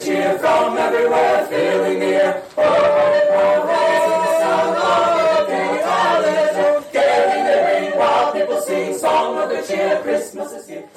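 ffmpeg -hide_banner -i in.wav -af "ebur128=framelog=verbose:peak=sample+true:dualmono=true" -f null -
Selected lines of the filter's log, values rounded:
Integrated loudness:
  I:         -13.2 LUFS
  Threshold: -23.4 LUFS
Loudness range:
  LRA:         2.1 LU
  Threshold: -33.0 LUFS
  LRA low:   -14.3 LUFS
  LRA high:  -12.2 LUFS
Sample peak:
  Peak:       -7.2 dBFS
True peak:
  Peak:       -7.2 dBFS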